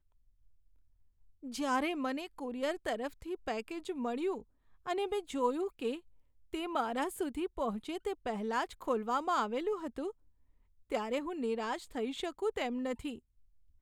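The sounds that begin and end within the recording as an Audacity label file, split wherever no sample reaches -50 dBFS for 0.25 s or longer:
1.430000	4.420000	sound
4.860000	6.000000	sound
6.530000	10.110000	sound
10.900000	13.180000	sound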